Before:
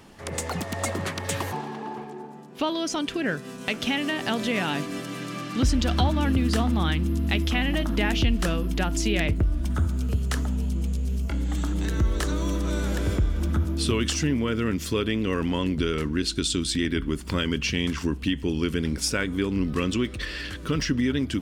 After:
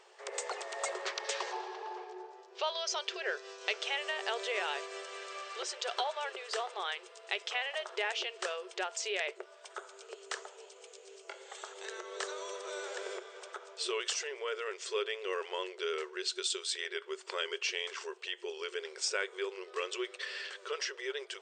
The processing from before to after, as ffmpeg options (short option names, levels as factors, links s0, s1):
-filter_complex "[0:a]asettb=1/sr,asplit=3[s0][s1][s2];[s0]atrim=end=1.054[s3];[s1]atrim=start=1.05:end=3.81,asetpts=PTS-STARTPTS,afade=t=in:d=0.004:c=qsin,afade=t=out:st=2.756:d=0.004:c=qsin,lowpass=f=5400:t=q:w=1.8[s4];[s2]atrim=start=3.806[s5];[s3][s4]acrossfade=d=0.004:c1=hsin:c2=qsin[s6];[s6][s5]acrossfade=d=0.004:c1=qsin:c2=hsin,afftfilt=real='re*between(b*sr/4096,360,8800)':imag='im*between(b*sr/4096,360,8800)':win_size=4096:overlap=0.75,volume=0.473"